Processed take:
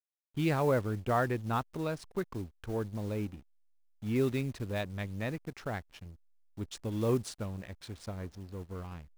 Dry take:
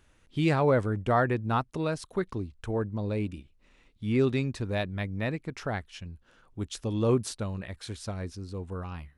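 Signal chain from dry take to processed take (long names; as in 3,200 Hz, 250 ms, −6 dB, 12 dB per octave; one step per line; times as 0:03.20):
one scale factor per block 5 bits
slack as between gear wheels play −40 dBFS
level −4.5 dB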